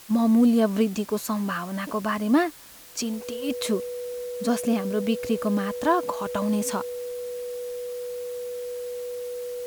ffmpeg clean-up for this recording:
-af "bandreject=f=490:w=30,afwtdn=0.0045"

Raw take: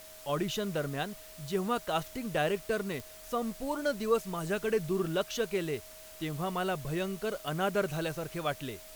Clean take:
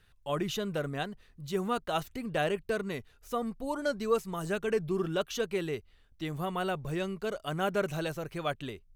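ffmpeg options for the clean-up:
-af "adeclick=t=4,bandreject=f=630:w=30,afwtdn=0.0028"

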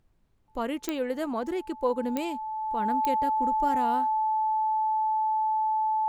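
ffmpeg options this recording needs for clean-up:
-af "adeclick=t=4,bandreject=f=870:w=30,agate=range=0.0891:threshold=0.0112"

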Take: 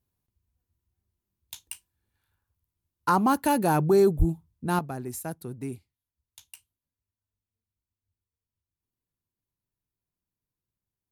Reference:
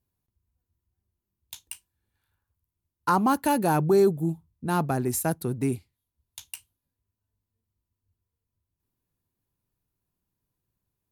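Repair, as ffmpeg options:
-filter_complex "[0:a]asplit=3[s0][s1][s2];[s0]afade=t=out:st=4.18:d=0.02[s3];[s1]highpass=f=140:w=0.5412,highpass=f=140:w=1.3066,afade=t=in:st=4.18:d=0.02,afade=t=out:st=4.3:d=0.02[s4];[s2]afade=t=in:st=4.3:d=0.02[s5];[s3][s4][s5]amix=inputs=3:normalize=0,asetnsamples=n=441:p=0,asendcmd='4.79 volume volume 8.5dB',volume=1"

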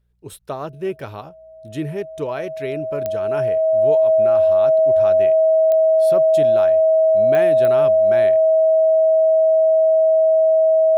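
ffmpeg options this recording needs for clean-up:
-af "adeclick=t=4,bandreject=f=59.9:t=h:w=4,bandreject=f=119.8:t=h:w=4,bandreject=f=179.7:t=h:w=4,bandreject=f=640:w=30"

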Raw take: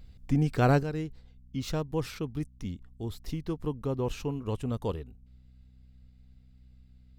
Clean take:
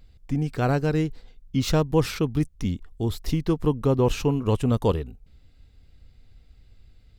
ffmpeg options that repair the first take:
-af "bandreject=f=63.1:t=h:w=4,bandreject=f=126.2:t=h:w=4,bandreject=f=189.3:t=h:w=4,bandreject=f=252.4:t=h:w=4,asetnsamples=n=441:p=0,asendcmd='0.83 volume volume 10dB',volume=1"

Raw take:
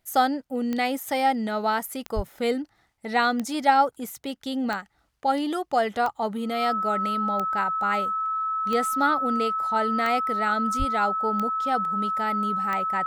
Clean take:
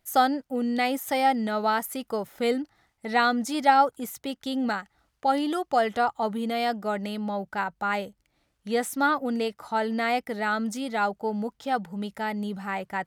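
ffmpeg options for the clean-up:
-filter_complex "[0:a]adeclick=t=4,bandreject=f=1300:w=30,asplit=3[s0][s1][s2];[s0]afade=t=out:st=2.15:d=0.02[s3];[s1]highpass=f=140:w=0.5412,highpass=f=140:w=1.3066,afade=t=in:st=2.15:d=0.02,afade=t=out:st=2.27:d=0.02[s4];[s2]afade=t=in:st=2.27:d=0.02[s5];[s3][s4][s5]amix=inputs=3:normalize=0,asplit=3[s6][s7][s8];[s6]afade=t=out:st=10.78:d=0.02[s9];[s7]highpass=f=140:w=0.5412,highpass=f=140:w=1.3066,afade=t=in:st=10.78:d=0.02,afade=t=out:st=10.9:d=0.02[s10];[s8]afade=t=in:st=10.9:d=0.02[s11];[s9][s10][s11]amix=inputs=3:normalize=0"

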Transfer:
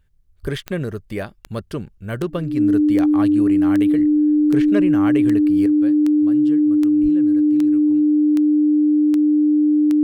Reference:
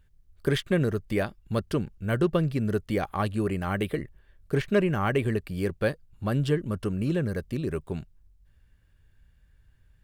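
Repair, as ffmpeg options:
-filter_complex "[0:a]adeclick=t=4,bandreject=f=300:w=30,asplit=3[s0][s1][s2];[s0]afade=t=out:st=0.42:d=0.02[s3];[s1]highpass=f=140:w=0.5412,highpass=f=140:w=1.3066,afade=t=in:st=0.42:d=0.02,afade=t=out:st=0.54:d=0.02[s4];[s2]afade=t=in:st=0.54:d=0.02[s5];[s3][s4][s5]amix=inputs=3:normalize=0,asplit=3[s6][s7][s8];[s6]afade=t=out:st=7.02:d=0.02[s9];[s7]highpass=f=140:w=0.5412,highpass=f=140:w=1.3066,afade=t=in:st=7.02:d=0.02,afade=t=out:st=7.14:d=0.02[s10];[s8]afade=t=in:st=7.14:d=0.02[s11];[s9][s10][s11]amix=inputs=3:normalize=0,asetnsamples=n=441:p=0,asendcmd='5.66 volume volume 12dB',volume=1"

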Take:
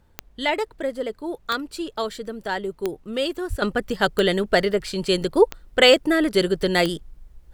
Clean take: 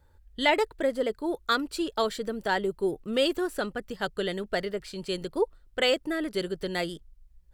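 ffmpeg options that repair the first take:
-filter_complex "[0:a]adeclick=t=4,asplit=3[s0][s1][s2];[s0]afade=t=out:st=3.49:d=0.02[s3];[s1]highpass=f=140:w=0.5412,highpass=f=140:w=1.3066,afade=t=in:st=3.49:d=0.02,afade=t=out:st=3.61:d=0.02[s4];[s2]afade=t=in:st=3.61:d=0.02[s5];[s3][s4][s5]amix=inputs=3:normalize=0,agate=range=0.0891:threshold=0.00708,asetnsamples=n=441:p=0,asendcmd='3.62 volume volume -10.5dB',volume=1"

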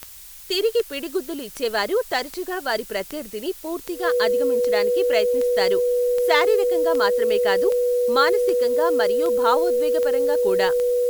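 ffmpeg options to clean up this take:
-af "adeclick=t=4,bandreject=f=490:w=30,afftdn=nr=27:nf=-40"

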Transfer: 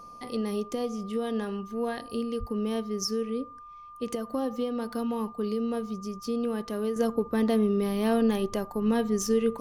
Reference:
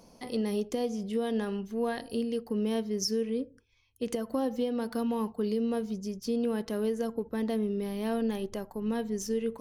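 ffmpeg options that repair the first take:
-filter_complex "[0:a]bandreject=f=1200:w=30,asplit=3[s0][s1][s2];[s0]afade=t=out:st=2.39:d=0.02[s3];[s1]highpass=f=140:w=0.5412,highpass=f=140:w=1.3066,afade=t=in:st=2.39:d=0.02,afade=t=out:st=2.51:d=0.02[s4];[s2]afade=t=in:st=2.51:d=0.02[s5];[s3][s4][s5]amix=inputs=3:normalize=0,agate=range=0.0891:threshold=0.0141,asetnsamples=n=441:p=0,asendcmd='6.96 volume volume -6dB',volume=1"

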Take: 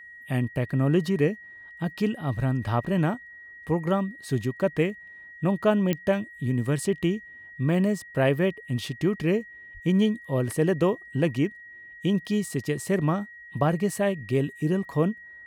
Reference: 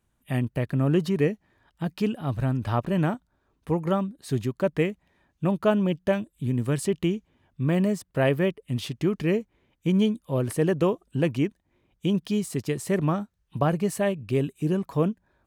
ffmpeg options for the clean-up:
-filter_complex "[0:a]adeclick=t=4,bandreject=f=1900:w=30,asplit=3[s0][s1][s2];[s0]afade=t=out:st=9.73:d=0.02[s3];[s1]highpass=f=140:w=0.5412,highpass=f=140:w=1.3066,afade=t=in:st=9.73:d=0.02,afade=t=out:st=9.85:d=0.02[s4];[s2]afade=t=in:st=9.85:d=0.02[s5];[s3][s4][s5]amix=inputs=3:normalize=0"

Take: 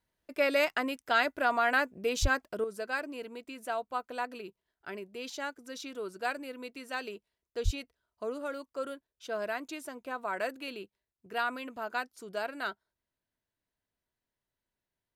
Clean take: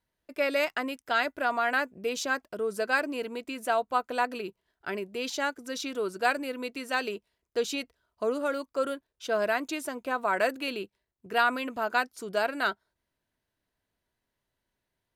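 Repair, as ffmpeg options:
-filter_complex "[0:a]asplit=3[s0][s1][s2];[s0]afade=t=out:st=2.21:d=0.02[s3];[s1]highpass=f=140:w=0.5412,highpass=f=140:w=1.3066,afade=t=in:st=2.21:d=0.02,afade=t=out:st=2.33:d=0.02[s4];[s2]afade=t=in:st=2.33:d=0.02[s5];[s3][s4][s5]amix=inputs=3:normalize=0,asplit=3[s6][s7][s8];[s6]afade=t=out:st=7.64:d=0.02[s9];[s7]highpass=f=140:w=0.5412,highpass=f=140:w=1.3066,afade=t=in:st=7.64:d=0.02,afade=t=out:st=7.76:d=0.02[s10];[s8]afade=t=in:st=7.76:d=0.02[s11];[s9][s10][s11]amix=inputs=3:normalize=0,asetnsamples=n=441:p=0,asendcmd='2.64 volume volume 7.5dB',volume=1"

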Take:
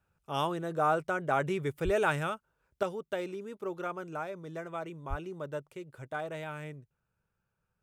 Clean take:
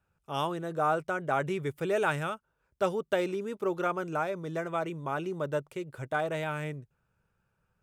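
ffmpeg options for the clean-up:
-filter_complex "[0:a]asplit=3[s0][s1][s2];[s0]afade=t=out:st=1.84:d=0.02[s3];[s1]highpass=f=140:w=0.5412,highpass=f=140:w=1.3066,afade=t=in:st=1.84:d=0.02,afade=t=out:st=1.96:d=0.02[s4];[s2]afade=t=in:st=1.96:d=0.02[s5];[s3][s4][s5]amix=inputs=3:normalize=0,asplit=3[s6][s7][s8];[s6]afade=t=out:st=5.09:d=0.02[s9];[s7]highpass=f=140:w=0.5412,highpass=f=140:w=1.3066,afade=t=in:st=5.09:d=0.02,afade=t=out:st=5.21:d=0.02[s10];[s8]afade=t=in:st=5.21:d=0.02[s11];[s9][s10][s11]amix=inputs=3:normalize=0,asetnsamples=n=441:p=0,asendcmd='2.83 volume volume 6.5dB',volume=1"

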